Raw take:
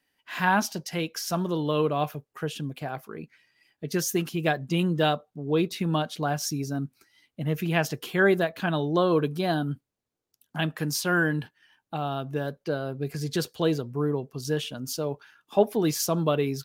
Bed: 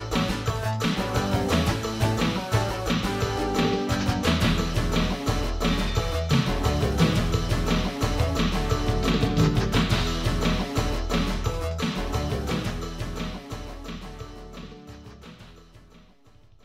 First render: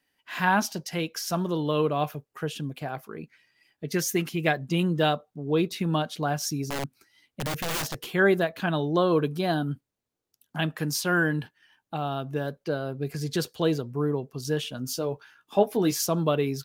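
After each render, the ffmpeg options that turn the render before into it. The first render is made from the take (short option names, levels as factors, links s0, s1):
-filter_complex "[0:a]asettb=1/sr,asplit=3[s0][s1][s2];[s0]atrim=end=3.914[s3];[s1]atrim=start=3.91:end=4.55,asetpts=PTS-STARTPTS,afade=t=in:d=0.004:c=qsin,afade=t=out:st=0.636:d=0.004:c=qsin,equalizer=f=2100:w=4.3:g=8[s4];[s2]atrim=start=4.546[s5];[s3][s4]acrossfade=d=0.004:c1=hsin:c2=qsin[s6];[s6][s5]acrossfade=d=0.004:c1=qsin:c2=hsin,asettb=1/sr,asplit=3[s7][s8][s9];[s7]atrim=end=6.644[s10];[s8]atrim=start=6.64:end=8.12,asetpts=PTS-STARTPTS,afade=t=in:d=0.004:c=qsin,afade=t=out:st=1.476:d=0.004:c=qsin,aeval=exprs='(mod(16.8*val(0)+1,2)-1)/16.8':c=same[s11];[s9]atrim=start=8.116[s12];[s10][s11]acrossfade=d=0.004:c1=hsin:c2=qsin[s13];[s13][s12]acrossfade=d=0.004:c1=qsin:c2=hsin,asettb=1/sr,asplit=3[s14][s15][s16];[s14]atrim=end=14.724[s17];[s15]atrim=start=14.72:end=16.01,asetpts=PTS-STARTPTS,afade=t=in:d=0.004:c=qsin,afade=t=out:st=1.286:d=0.004:c=qsin,asplit=2[s18][s19];[s19]adelay=16,volume=0.376[s20];[s18][s20]amix=inputs=2:normalize=0,atrim=end_sample=56889[s21];[s16]atrim=start=16.006[s22];[s17][s21]acrossfade=d=0.004:c1=hsin:c2=qsin[s23];[s23][s22]acrossfade=d=0.004:c1=qsin:c2=hsin"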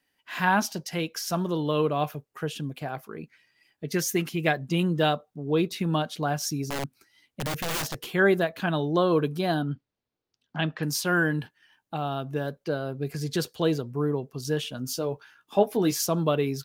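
-filter_complex "[0:a]asettb=1/sr,asplit=3[s0][s1][s2];[s0]atrim=end=9.624[s3];[s1]atrim=start=9.62:end=10.83,asetpts=PTS-STARTPTS,afade=t=in:d=0.004:c=qsin,afade=t=out:st=1.206:d=0.004:c=qsin,lowpass=f=5200:w=0.5412,lowpass=f=5200:w=1.3066[s4];[s2]atrim=start=10.826[s5];[s3][s4]acrossfade=d=0.004:c1=hsin:c2=qsin[s6];[s6][s5]acrossfade=d=0.004:c1=qsin:c2=hsin"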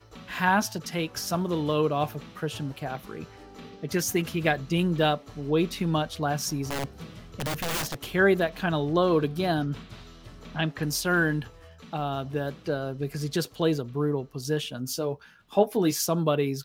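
-filter_complex "[1:a]volume=0.0841[s0];[0:a][s0]amix=inputs=2:normalize=0"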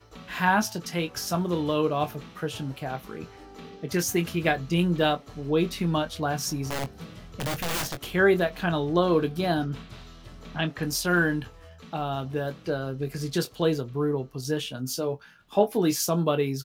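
-filter_complex "[0:a]asplit=2[s0][s1];[s1]adelay=23,volume=0.335[s2];[s0][s2]amix=inputs=2:normalize=0"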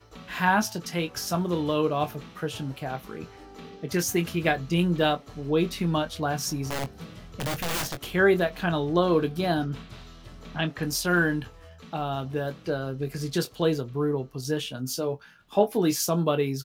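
-af anull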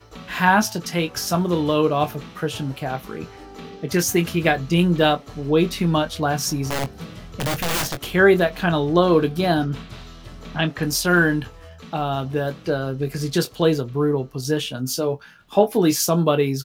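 -af "volume=2,alimiter=limit=0.708:level=0:latency=1"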